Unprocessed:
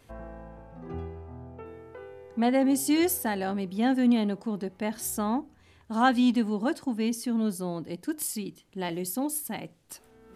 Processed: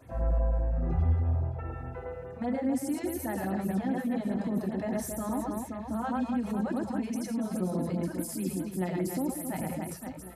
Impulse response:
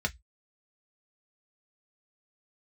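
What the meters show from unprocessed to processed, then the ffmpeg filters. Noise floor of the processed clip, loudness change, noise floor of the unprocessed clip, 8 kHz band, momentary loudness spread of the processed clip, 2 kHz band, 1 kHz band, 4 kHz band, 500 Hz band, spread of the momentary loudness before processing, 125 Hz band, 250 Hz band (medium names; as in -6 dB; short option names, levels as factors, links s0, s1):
-42 dBFS, -4.0 dB, -59 dBFS, -7.0 dB, 7 LU, -8.0 dB, -5.5 dB, -13.0 dB, -2.5 dB, 21 LU, +8.5 dB, -4.0 dB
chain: -filter_complex "[0:a]acompressor=threshold=0.0398:ratio=6,aecho=1:1:110|275|522.5|893.8|1451:0.631|0.398|0.251|0.158|0.1,alimiter=level_in=1.58:limit=0.0631:level=0:latency=1:release=24,volume=0.631,asplit=2[s0][s1];[1:a]atrim=start_sample=2205,lowshelf=f=490:g=6[s2];[s1][s2]afir=irnorm=-1:irlink=0,volume=0.422[s3];[s0][s3]amix=inputs=2:normalize=0,afftfilt=real='re*(1-between(b*sr/1024,240*pow(6500/240,0.5+0.5*sin(2*PI*4.9*pts/sr))/1.41,240*pow(6500/240,0.5+0.5*sin(2*PI*4.9*pts/sr))*1.41))':imag='im*(1-between(b*sr/1024,240*pow(6500/240,0.5+0.5*sin(2*PI*4.9*pts/sr))/1.41,240*pow(6500/240,0.5+0.5*sin(2*PI*4.9*pts/sr))*1.41))':win_size=1024:overlap=0.75"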